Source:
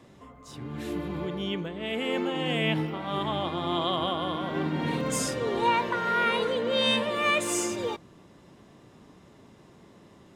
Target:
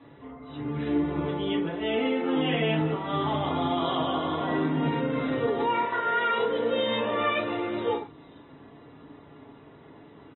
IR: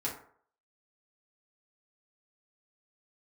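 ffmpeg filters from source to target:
-filter_complex "[0:a]lowshelf=frequency=100:gain=-5.5[link_01];[1:a]atrim=start_sample=2205,atrim=end_sample=6174[link_02];[link_01][link_02]afir=irnorm=-1:irlink=0,asplit=3[link_03][link_04][link_05];[link_03]afade=type=out:start_time=2.36:duration=0.02[link_06];[link_04]acontrast=73,afade=type=in:start_time=2.36:duration=0.02,afade=type=out:start_time=2.94:duration=0.02[link_07];[link_05]afade=type=in:start_time=2.94:duration=0.02[link_08];[link_06][link_07][link_08]amix=inputs=3:normalize=0,asettb=1/sr,asplit=3[link_09][link_10][link_11];[link_09]atrim=end=5.854[link_12];[link_10]atrim=start=5.85:end=6.38,asetpts=PTS-STARTPTS,afade=type=in:duration=0.004:curve=qsin,afade=type=out:start_time=0.526:duration=0.004:curve=qsin,equalizer=frequency=190:width=0.44:gain=-8[link_13];[link_11]atrim=start=6.376[link_14];[link_12][link_13]acrossfade=duration=0.004:curve1=hsin:curve2=qsin[link_15];[link_15][link_14]acrossfade=duration=0.004:curve1=qsin:curve2=hsin,alimiter=limit=-17dB:level=0:latency=1:release=357,acrossover=split=5800[link_16][link_17];[link_17]adelay=450[link_18];[link_16][link_18]amix=inputs=2:normalize=0" -ar 24000 -c:a aac -b:a 16k

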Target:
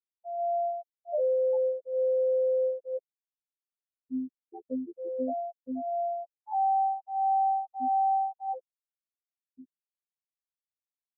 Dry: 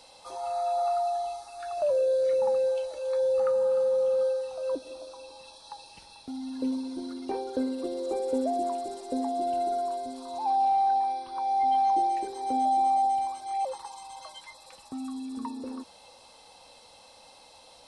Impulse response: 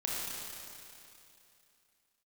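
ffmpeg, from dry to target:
-af "afftfilt=real='re*gte(hypot(re,im),0.282)':imag='im*gte(hypot(re,im),0.282)':win_size=1024:overlap=0.75,atempo=1.6,afftfilt=real='hypot(re,im)*cos(PI*b)':imag='0':win_size=2048:overlap=0.75"

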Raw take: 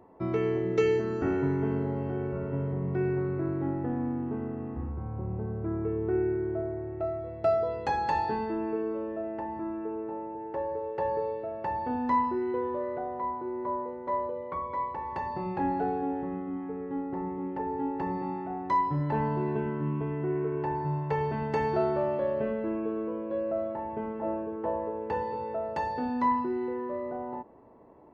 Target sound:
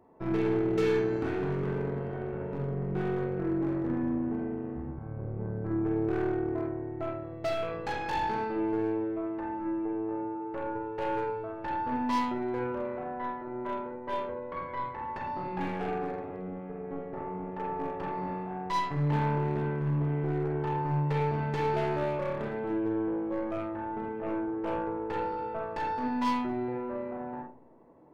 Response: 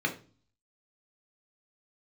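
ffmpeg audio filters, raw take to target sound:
-filter_complex "[0:a]aeval=exprs='0.178*(cos(1*acos(clip(val(0)/0.178,-1,1)))-cos(1*PI/2))+0.02*(cos(2*acos(clip(val(0)/0.178,-1,1)))-cos(2*PI/2))+0.0126*(cos(3*acos(clip(val(0)/0.178,-1,1)))-cos(3*PI/2))+0.0398*(cos(4*acos(clip(val(0)/0.178,-1,1)))-cos(4*PI/2))+0.0398*(cos(6*acos(clip(val(0)/0.178,-1,1)))-cos(6*PI/2))':channel_layout=same,asoftclip=type=hard:threshold=-22dB,asplit=2[link_01][link_02];[1:a]atrim=start_sample=2205,adelay=47[link_03];[link_02][link_03]afir=irnorm=-1:irlink=0,volume=-9.5dB[link_04];[link_01][link_04]amix=inputs=2:normalize=0,volume=-3.5dB"

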